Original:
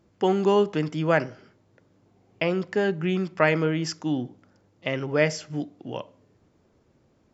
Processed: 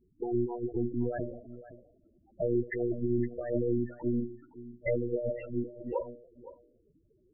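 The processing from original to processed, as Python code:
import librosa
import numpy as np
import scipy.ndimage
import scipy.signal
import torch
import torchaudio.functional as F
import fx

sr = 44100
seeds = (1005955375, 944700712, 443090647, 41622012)

y = fx.comb_fb(x, sr, f0_hz=89.0, decay_s=0.87, harmonics='all', damping=0.0, mix_pct=50)
y = fx.env_lowpass(y, sr, base_hz=1400.0, full_db=-25.5)
y = fx.lpc_monotone(y, sr, seeds[0], pitch_hz=120.0, order=16)
y = fx.over_compress(y, sr, threshold_db=-30.0, ratio=-0.5)
y = fx.spec_topn(y, sr, count=8)
y = fx.low_shelf(y, sr, hz=270.0, db=-11.5)
y = y + 10.0 ** (-16.0 / 20.0) * np.pad(y, (int(514 * sr / 1000.0), 0))[:len(y)]
y = y * librosa.db_to_amplitude(8.5)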